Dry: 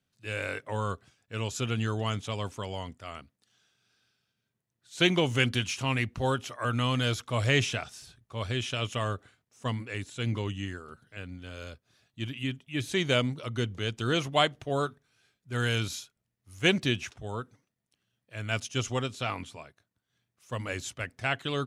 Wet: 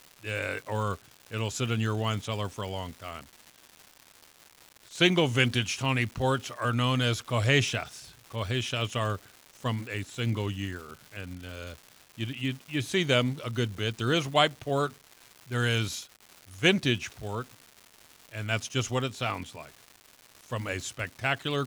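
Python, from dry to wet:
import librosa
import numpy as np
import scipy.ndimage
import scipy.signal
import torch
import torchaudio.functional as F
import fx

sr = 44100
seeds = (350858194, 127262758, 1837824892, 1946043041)

y = fx.dmg_crackle(x, sr, seeds[0], per_s=390.0, level_db=-40.0)
y = y * 10.0 ** (1.5 / 20.0)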